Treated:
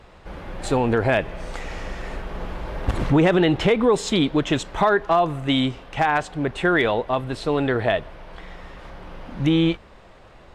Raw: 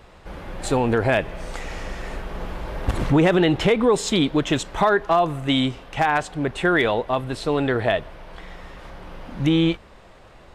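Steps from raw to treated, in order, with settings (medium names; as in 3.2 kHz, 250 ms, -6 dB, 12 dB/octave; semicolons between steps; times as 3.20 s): treble shelf 8.6 kHz -8 dB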